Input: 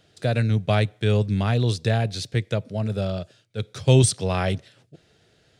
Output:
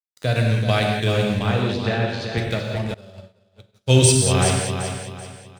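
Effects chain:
high-shelf EQ 2,000 Hz +6 dB
dead-zone distortion −36 dBFS
0:01.39–0:02.38: band-pass filter 160–3,100 Hz
repeating echo 383 ms, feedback 33%, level −7.5 dB
reverb whose tail is shaped and stops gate 230 ms flat, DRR 0.5 dB
0:02.94–0:03.93: expander for the loud parts 2.5 to 1, over −36 dBFS

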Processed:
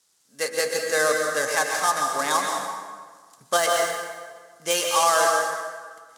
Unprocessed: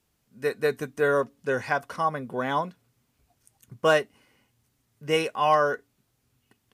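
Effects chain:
gap after every zero crossing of 0.064 ms
meter weighting curve ITU-R 468
de-essing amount 40%
parametric band 2,400 Hz −10 dB 1.3 octaves
hum removal 75.07 Hz, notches 39
speed change +9%
dense smooth reverb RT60 1.6 s, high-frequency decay 0.7×, pre-delay 110 ms, DRR 2 dB
boost into a limiter +12 dB
level −6 dB

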